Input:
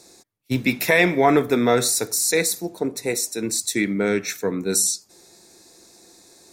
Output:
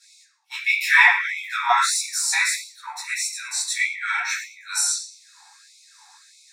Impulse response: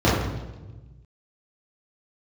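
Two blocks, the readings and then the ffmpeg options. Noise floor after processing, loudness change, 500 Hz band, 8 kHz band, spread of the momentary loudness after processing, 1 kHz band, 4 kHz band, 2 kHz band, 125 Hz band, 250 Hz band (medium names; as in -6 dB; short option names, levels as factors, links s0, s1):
-54 dBFS, +0.5 dB, -21.5 dB, -1.5 dB, 15 LU, +2.5 dB, +1.5 dB, +6.0 dB, under -40 dB, under -40 dB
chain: -filter_complex "[0:a]lowshelf=f=540:t=q:w=1.5:g=-7.5[s0];[1:a]atrim=start_sample=2205,afade=t=out:st=0.39:d=0.01,atrim=end_sample=17640,asetrate=61740,aresample=44100[s1];[s0][s1]afir=irnorm=-1:irlink=0,afftfilt=real='re*gte(b*sr/1024,730*pow(2100/730,0.5+0.5*sin(2*PI*1.6*pts/sr)))':imag='im*gte(b*sr/1024,730*pow(2100/730,0.5+0.5*sin(2*PI*1.6*pts/sr)))':win_size=1024:overlap=0.75,volume=0.299"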